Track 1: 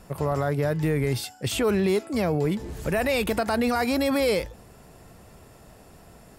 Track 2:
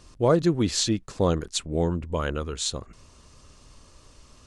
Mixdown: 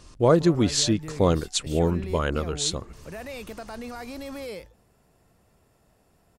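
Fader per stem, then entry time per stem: -13.5 dB, +2.0 dB; 0.20 s, 0.00 s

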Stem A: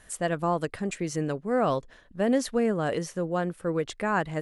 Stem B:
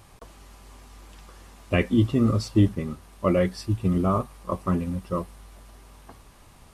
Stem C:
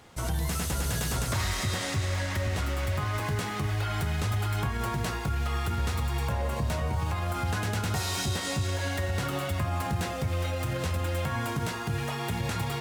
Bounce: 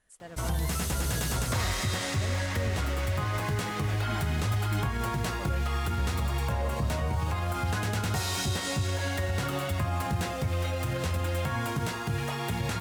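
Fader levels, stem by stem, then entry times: -18.0 dB, -20.0 dB, 0.0 dB; 0.00 s, 2.15 s, 0.20 s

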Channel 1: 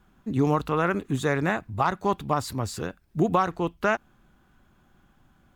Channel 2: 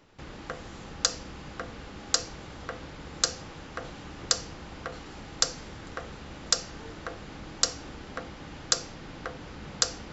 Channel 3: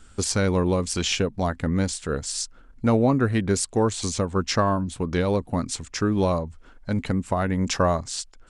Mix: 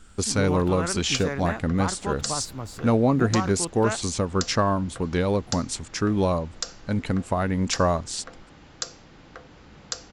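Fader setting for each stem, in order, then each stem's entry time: -6.0 dB, -6.5 dB, -0.5 dB; 0.00 s, 0.10 s, 0.00 s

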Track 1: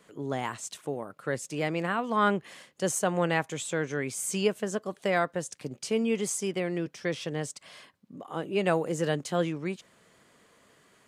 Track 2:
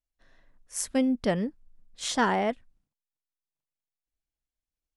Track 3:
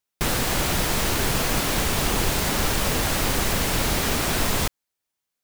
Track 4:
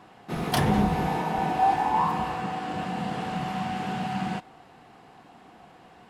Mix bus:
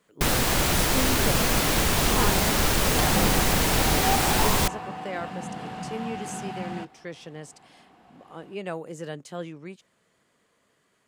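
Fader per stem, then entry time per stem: -7.5 dB, -5.5 dB, +0.5 dB, -5.0 dB; 0.00 s, 0.00 s, 0.00 s, 2.45 s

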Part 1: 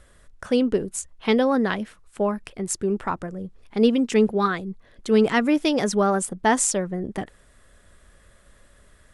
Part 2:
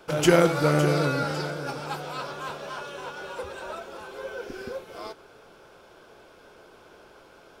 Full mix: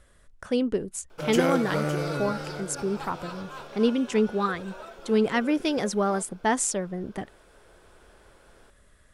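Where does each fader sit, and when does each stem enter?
-4.5 dB, -6.0 dB; 0.00 s, 1.10 s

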